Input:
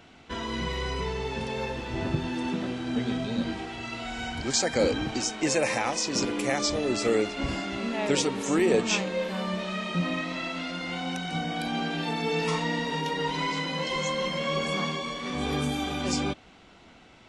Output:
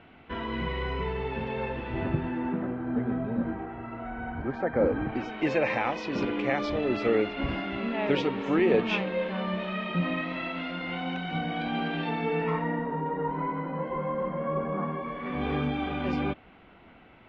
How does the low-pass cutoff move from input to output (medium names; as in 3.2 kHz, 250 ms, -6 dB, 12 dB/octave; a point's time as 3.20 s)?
low-pass 24 dB/octave
1.99 s 2.8 kHz
2.75 s 1.6 kHz
4.89 s 1.6 kHz
5.44 s 3.1 kHz
12.07 s 3.1 kHz
12.95 s 1.4 kHz
14.81 s 1.4 kHz
15.44 s 2.7 kHz